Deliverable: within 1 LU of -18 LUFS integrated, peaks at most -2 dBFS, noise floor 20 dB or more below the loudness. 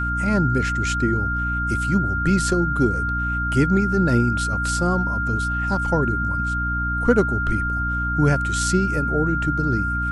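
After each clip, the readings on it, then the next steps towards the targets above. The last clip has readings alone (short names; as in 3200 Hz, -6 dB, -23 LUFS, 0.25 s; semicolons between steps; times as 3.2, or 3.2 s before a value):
hum 60 Hz; harmonics up to 300 Hz; hum level -24 dBFS; steady tone 1400 Hz; tone level -23 dBFS; loudness -21.0 LUFS; peak -4.0 dBFS; loudness target -18.0 LUFS
-> notches 60/120/180/240/300 Hz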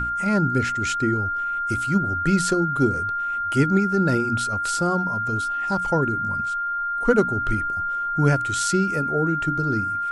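hum none; steady tone 1400 Hz; tone level -23 dBFS
-> notch 1400 Hz, Q 30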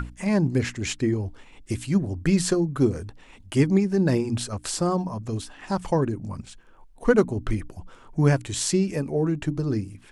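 steady tone none; loudness -25.0 LUFS; peak -5.5 dBFS; loudness target -18.0 LUFS
-> gain +7 dB; limiter -2 dBFS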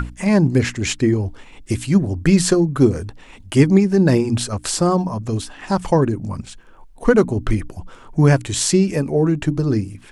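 loudness -18.0 LUFS; peak -2.0 dBFS; noise floor -44 dBFS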